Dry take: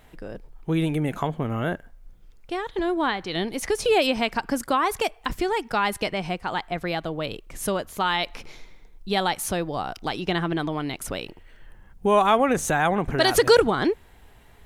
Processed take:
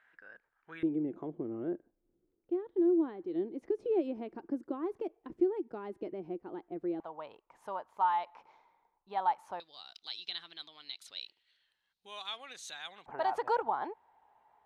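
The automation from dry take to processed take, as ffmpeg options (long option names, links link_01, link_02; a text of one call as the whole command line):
ffmpeg -i in.wav -af "asetnsamples=nb_out_samples=441:pad=0,asendcmd='0.83 bandpass f 340;7 bandpass f 910;9.6 bandpass f 4000;13.06 bandpass f 870',bandpass=frequency=1600:width_type=q:width=6:csg=0" out.wav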